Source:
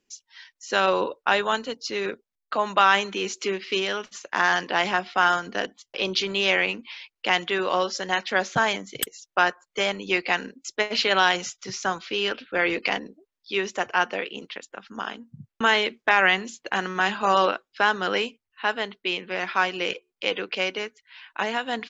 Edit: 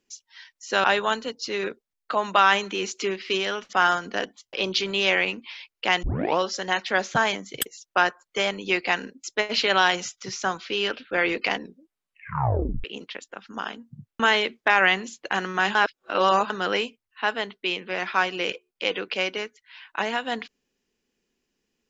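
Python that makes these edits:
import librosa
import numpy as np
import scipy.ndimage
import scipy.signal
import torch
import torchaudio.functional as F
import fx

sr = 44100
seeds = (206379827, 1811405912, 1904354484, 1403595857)

y = fx.edit(x, sr, fx.cut(start_s=0.84, length_s=0.42),
    fx.cut(start_s=4.15, length_s=0.99),
    fx.tape_start(start_s=7.44, length_s=0.35),
    fx.tape_stop(start_s=13.01, length_s=1.24),
    fx.reverse_span(start_s=17.16, length_s=0.75), tone=tone)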